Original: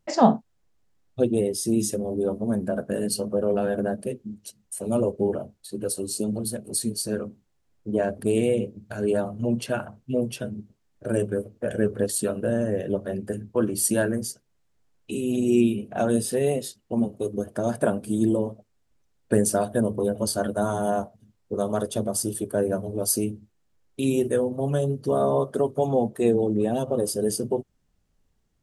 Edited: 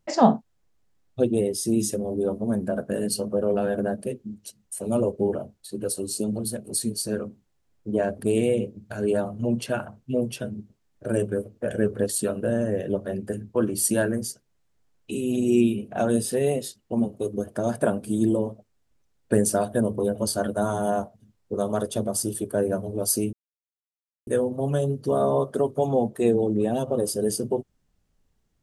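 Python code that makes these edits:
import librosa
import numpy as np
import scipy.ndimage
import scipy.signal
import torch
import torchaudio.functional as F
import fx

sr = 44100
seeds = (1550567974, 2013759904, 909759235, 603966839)

y = fx.edit(x, sr, fx.silence(start_s=23.33, length_s=0.94), tone=tone)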